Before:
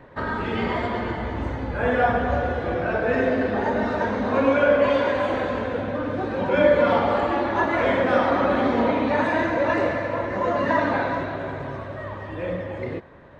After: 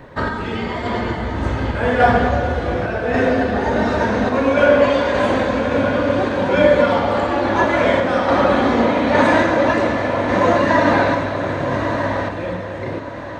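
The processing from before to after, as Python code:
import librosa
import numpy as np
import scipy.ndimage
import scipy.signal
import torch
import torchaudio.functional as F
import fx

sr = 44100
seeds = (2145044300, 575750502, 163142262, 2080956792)

y = fx.bass_treble(x, sr, bass_db=2, treble_db=9)
y = fx.echo_diffused(y, sr, ms=1216, feedback_pct=51, wet_db=-7.5)
y = fx.tremolo_random(y, sr, seeds[0], hz=3.5, depth_pct=55)
y = y * 10.0 ** (7.0 / 20.0)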